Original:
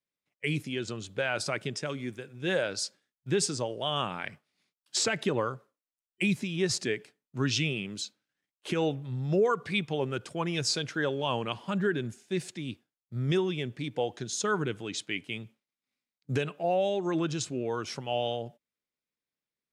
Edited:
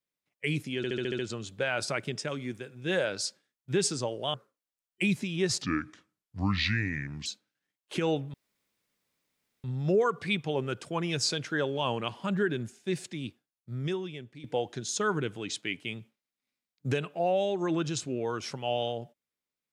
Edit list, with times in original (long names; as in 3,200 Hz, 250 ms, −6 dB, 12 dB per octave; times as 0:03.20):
0:00.77: stutter 0.07 s, 7 plays
0:03.92–0:05.54: remove
0:06.82–0:08.00: play speed 72%
0:09.08: splice in room tone 1.30 s
0:12.64–0:13.88: fade out, to −13.5 dB